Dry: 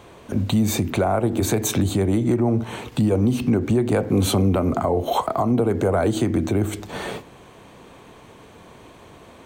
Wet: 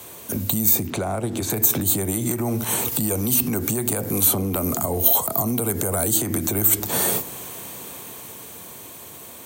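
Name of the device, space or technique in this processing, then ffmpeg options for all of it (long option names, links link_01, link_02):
FM broadcast chain: -filter_complex "[0:a]highpass=76,dynaudnorm=framelen=260:gausssize=17:maxgain=11.5dB,acrossover=split=230|720|1500|4600[link_01][link_02][link_03][link_04][link_05];[link_01]acompressor=threshold=-24dB:ratio=4[link_06];[link_02]acompressor=threshold=-27dB:ratio=4[link_07];[link_03]acompressor=threshold=-32dB:ratio=4[link_08];[link_04]acompressor=threshold=-41dB:ratio=4[link_09];[link_05]acompressor=threshold=-39dB:ratio=4[link_10];[link_06][link_07][link_08][link_09][link_10]amix=inputs=5:normalize=0,aemphasis=mode=production:type=50fm,alimiter=limit=-15.5dB:level=0:latency=1:release=105,asoftclip=type=hard:threshold=-16.5dB,lowpass=frequency=15000:width=0.5412,lowpass=frequency=15000:width=1.3066,aemphasis=mode=production:type=50fm,asettb=1/sr,asplit=3[link_11][link_12][link_13];[link_11]atrim=end=0.874[link_14];[link_12]atrim=start=0.87:end=1.5,asetpts=PTS-STARTPTS,afade=type=in:duration=0.004:curve=qsin,afade=type=out:start_time=0.626:duration=0.004:curve=qsin,lowpass=5600[link_15];[link_13]atrim=start=1.496[link_16];[link_14][link_15]acrossfade=duration=0.004:curve1=hsin:curve2=qsin[link_17];[link_17][link_16]acrossfade=duration=0.004:curve1=qsin:curve2=hsin"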